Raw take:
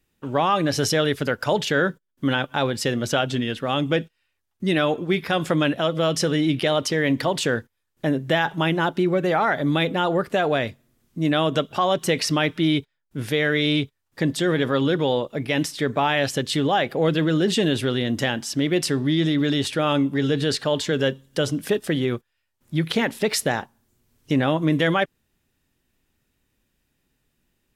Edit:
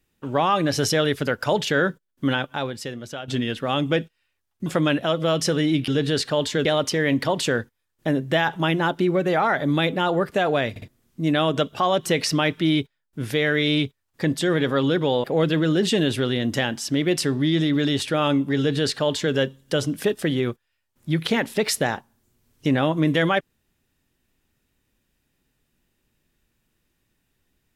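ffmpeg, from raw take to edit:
ffmpeg -i in.wav -filter_complex "[0:a]asplit=9[link_01][link_02][link_03][link_04][link_05][link_06][link_07][link_08][link_09];[link_01]atrim=end=3.28,asetpts=PTS-STARTPTS,afade=type=out:start_time=2.29:duration=0.99:curve=qua:silence=0.237137[link_10];[link_02]atrim=start=3.28:end=4.662,asetpts=PTS-STARTPTS,afade=type=in:duration=0.004:curve=hsin:silence=0.237137[link_11];[link_03]atrim=start=5.408:end=6.632[link_12];[link_04]atrim=start=20.218:end=20.992[link_13];[link_05]atrim=start=6.628:end=10.742[link_14];[link_06]atrim=start=10.678:end=10.742[link_15];[link_07]atrim=start=10.678:end=10.742[link_16];[link_08]atrim=start=10.858:end=15.222[link_17];[link_09]atrim=start=16.888[link_18];[link_10][link_11]concat=n=2:v=0:a=1[link_19];[link_19][link_12]acrossfade=duration=0.004:curve1=hsin:curve2=hsin[link_20];[link_20][link_13]acrossfade=duration=0.004:curve1=hsin:curve2=hsin[link_21];[link_21][link_14]acrossfade=duration=0.004:curve1=hsin:curve2=hsin[link_22];[link_22][link_15]acrossfade=duration=0.004:curve1=hsin:curve2=hsin[link_23];[link_23][link_16]acrossfade=duration=0.004:curve1=hsin:curve2=hsin[link_24];[link_24][link_17]acrossfade=duration=0.004:curve1=hsin:curve2=hsin[link_25];[link_25][link_18]acrossfade=duration=0.004:curve1=hsin:curve2=hsin" out.wav

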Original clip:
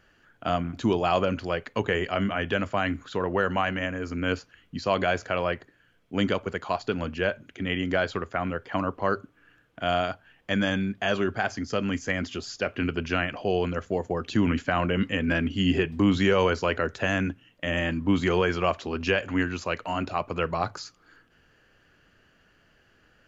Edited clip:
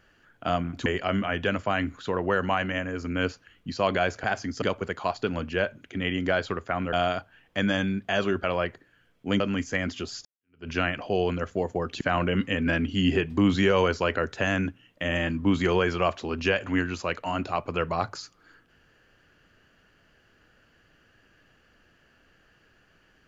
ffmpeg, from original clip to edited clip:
ffmpeg -i in.wav -filter_complex "[0:a]asplit=9[link_01][link_02][link_03][link_04][link_05][link_06][link_07][link_08][link_09];[link_01]atrim=end=0.862[link_10];[link_02]atrim=start=1.928:end=5.312[link_11];[link_03]atrim=start=11.368:end=11.752[link_12];[link_04]atrim=start=6.268:end=8.582[link_13];[link_05]atrim=start=9.858:end=11.372[link_14];[link_06]atrim=start=5.308:end=6.272[link_15];[link_07]atrim=start=11.748:end=12.6,asetpts=PTS-STARTPTS,afade=type=out:start_time=0.848:duration=0.004:curve=hsin[link_16];[link_08]atrim=start=12.6:end=14.362,asetpts=PTS-STARTPTS,afade=type=in:duration=0.44:curve=exp[link_17];[link_09]atrim=start=14.628[link_18];[link_10][link_11]acrossfade=duration=0.004:curve1=hsin:curve2=hsin[link_19];[link_19][link_12]acrossfade=duration=0.004:curve1=hsin:curve2=hsin[link_20];[link_20][link_13]acrossfade=duration=0.004:curve1=hsin:curve2=hsin[link_21];[link_21][link_14]acrossfade=duration=0.004:curve1=hsin:curve2=hsin[link_22];[link_22][link_15]acrossfade=duration=0.004:curve1=hsin:curve2=hsin[link_23];[link_16][link_17]concat=n=2:v=0:a=1[link_24];[link_23][link_24]acrossfade=duration=0.004:curve1=hsin:curve2=hsin[link_25];[link_25][link_18]acrossfade=duration=0.004:curve1=hsin:curve2=hsin" out.wav

